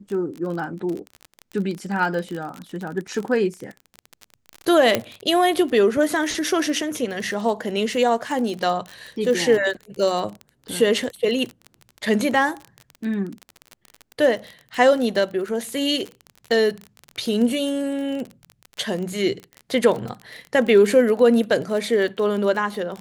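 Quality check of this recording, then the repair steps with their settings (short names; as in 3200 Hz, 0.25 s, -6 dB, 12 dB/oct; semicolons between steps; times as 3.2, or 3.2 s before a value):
crackle 30/s -26 dBFS
4.95 pop -4 dBFS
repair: de-click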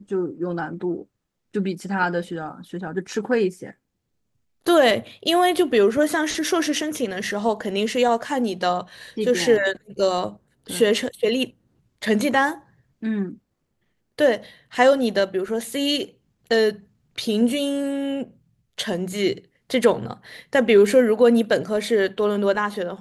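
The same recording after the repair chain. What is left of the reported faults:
none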